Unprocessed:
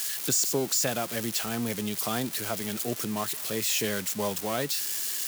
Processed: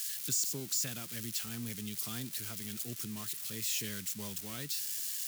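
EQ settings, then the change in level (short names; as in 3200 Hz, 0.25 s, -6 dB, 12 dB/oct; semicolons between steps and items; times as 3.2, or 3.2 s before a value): passive tone stack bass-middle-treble 6-0-2; +8.0 dB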